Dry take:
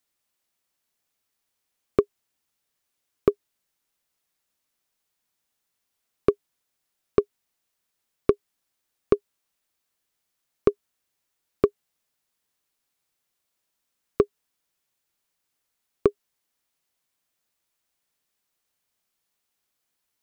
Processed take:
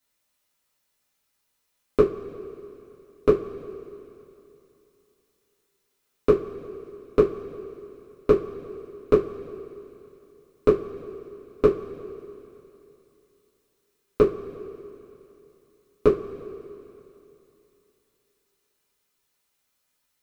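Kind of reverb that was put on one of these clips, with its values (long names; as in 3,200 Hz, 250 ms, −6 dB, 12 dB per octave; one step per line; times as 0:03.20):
coupled-rooms reverb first 0.22 s, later 3 s, from −22 dB, DRR −8 dB
level −4 dB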